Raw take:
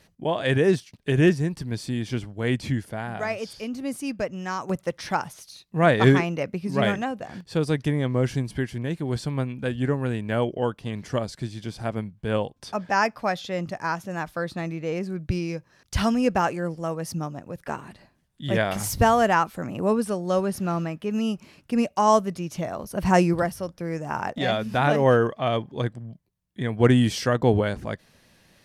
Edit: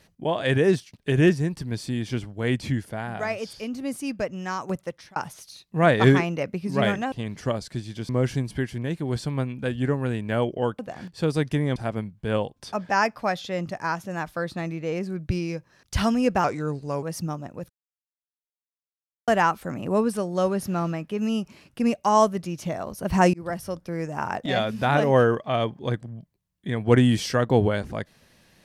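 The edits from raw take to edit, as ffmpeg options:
-filter_complex "[0:a]asplit=11[a][b][c][d][e][f][g][h][i][j][k];[a]atrim=end=5.16,asetpts=PTS-STARTPTS,afade=t=out:st=4.45:d=0.71:c=qsin[l];[b]atrim=start=5.16:end=7.122,asetpts=PTS-STARTPTS,afade=t=in:d=0.004:c=hsin[m];[c]atrim=start=10.788:end=11.762[n];[d]atrim=start=8.088:end=10.792[o];[e]atrim=start=7.118:end=8.092[p];[f]atrim=start=11.758:end=16.444[q];[g]atrim=start=16.44:end=16.95,asetpts=PTS-STARTPTS,asetrate=38367,aresample=44100[r];[h]atrim=start=16.946:end=17.62,asetpts=PTS-STARTPTS,afade=t=out:st=0.67:d=0.004:c=hsin[s];[i]atrim=start=17.62:end=19.2,asetpts=PTS-STARTPTS,volume=0[t];[j]atrim=start=19.2:end=23.26,asetpts=PTS-STARTPTS,afade=t=in:d=0.004:c=hsin,afade=t=out:st=4.056:d=0.004:c=hsin[u];[k]atrim=start=23.26,asetpts=PTS-STARTPTS,afade=t=in:d=0.33[v];[l][m]concat=n=2:v=0:a=1[w];[w][n]acrossfade=d=0.004:c1=hsin:c2=hsin[x];[x][o]acrossfade=d=0.004:c1=hsin:c2=hsin[y];[y][p]acrossfade=d=0.004:c1=hsin:c2=hsin[z];[z][q]acrossfade=d=0.004:c1=hsin:c2=hsin[aa];[aa][r]acrossfade=d=0.004:c1=hsin:c2=hsin[ab];[s][t][u][v]concat=n=4:v=0:a=1[ac];[ab][ac]acrossfade=d=0.004:c1=hsin:c2=hsin"

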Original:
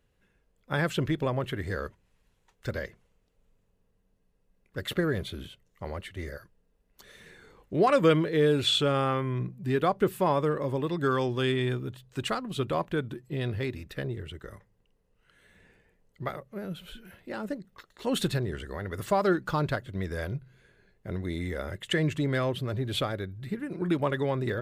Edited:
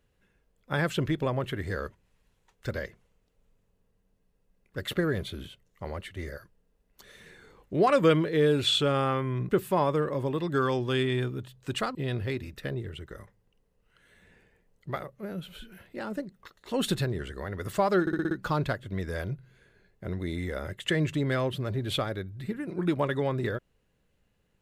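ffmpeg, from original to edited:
-filter_complex "[0:a]asplit=8[a][b][c][d][e][f][g][h];[a]atrim=end=9.492[i];[b]atrim=start=9.978:end=12.442[j];[c]atrim=start=13.278:end=19.402[k];[d]atrim=start=19.338:end=19.402[l];[e]atrim=start=19.338:end=19.402[m];[f]atrim=start=19.338:end=19.402[n];[g]atrim=start=19.338:end=19.402[o];[h]atrim=start=19.338[p];[i][j]acrossfade=d=0.004:c1=hsin:c2=hsin[q];[q][k]acrossfade=d=0.004:c1=hsin:c2=hsin[r];[r][l]acrossfade=d=0.004:c1=hsin:c2=hsin[s];[s][m]acrossfade=d=0.004:c1=hsin:c2=hsin[t];[t][n]acrossfade=d=0.004:c1=hsin:c2=hsin[u];[u][o]acrossfade=d=0.004:c1=hsin:c2=hsin[v];[v][p]acrossfade=d=0.004:c1=hsin:c2=hsin"

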